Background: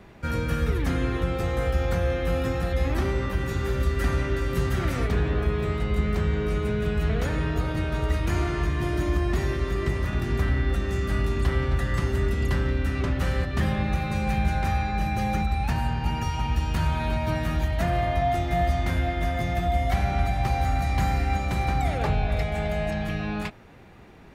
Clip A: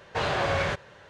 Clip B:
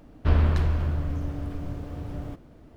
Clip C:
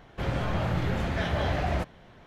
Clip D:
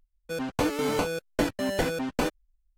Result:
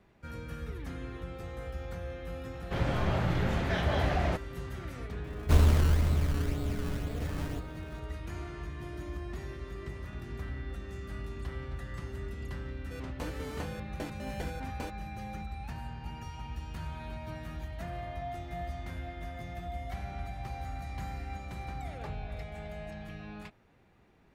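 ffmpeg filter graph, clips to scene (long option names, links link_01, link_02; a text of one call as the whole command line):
ffmpeg -i bed.wav -i cue0.wav -i cue1.wav -i cue2.wav -i cue3.wav -filter_complex "[0:a]volume=-15dB[link_01];[2:a]acrusher=samples=21:mix=1:aa=0.000001:lfo=1:lforange=21:lforate=2[link_02];[3:a]atrim=end=2.26,asetpts=PTS-STARTPTS,volume=-1.5dB,afade=type=in:duration=0.004:curve=hsin,afade=type=out:start_time=2.256:duration=0.004:curve=hsin,adelay=2530[link_03];[link_02]atrim=end=2.76,asetpts=PTS-STARTPTS,volume=-1.5dB,afade=type=in:duration=0.004:curve=hsin,afade=type=out:start_time=2.756:duration=0.004:curve=hsin,adelay=5240[link_04];[4:a]atrim=end=2.77,asetpts=PTS-STARTPTS,volume=-14.5dB,afade=type=in:duration=0.004:curve=hsin,afade=type=out:start_time=2.766:duration=0.004:curve=hsin,adelay=12610[link_05];[link_01][link_03][link_04][link_05]amix=inputs=4:normalize=0" out.wav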